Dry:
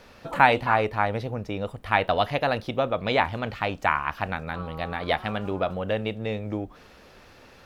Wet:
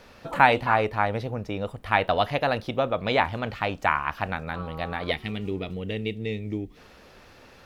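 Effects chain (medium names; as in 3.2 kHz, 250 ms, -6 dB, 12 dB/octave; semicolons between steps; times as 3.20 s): time-frequency box 5.11–6.78 s, 490–1800 Hz -14 dB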